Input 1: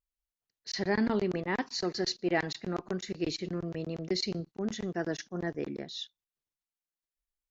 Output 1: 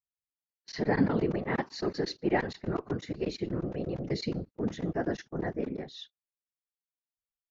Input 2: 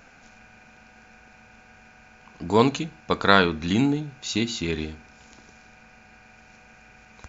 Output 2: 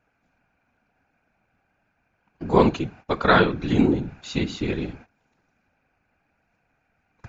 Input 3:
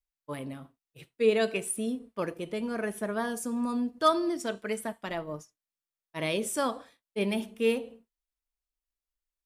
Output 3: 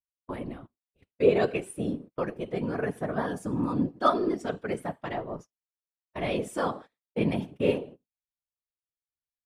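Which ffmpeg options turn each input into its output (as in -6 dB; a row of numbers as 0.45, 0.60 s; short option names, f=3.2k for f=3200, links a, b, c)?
-af "afftfilt=real='hypot(re,im)*cos(2*PI*random(0))':imag='hypot(re,im)*sin(2*PI*random(1))':win_size=512:overlap=0.75,agate=range=-19dB:threshold=-51dB:ratio=16:detection=peak,lowpass=f=1.8k:p=1,volume=8dB"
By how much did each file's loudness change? +1.0, +1.0, +1.0 LU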